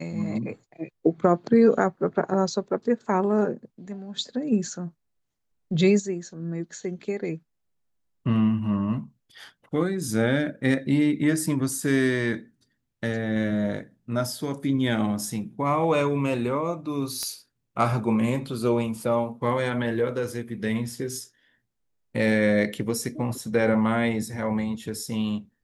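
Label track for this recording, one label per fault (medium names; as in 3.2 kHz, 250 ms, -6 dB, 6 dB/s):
17.230000	17.230000	pop -16 dBFS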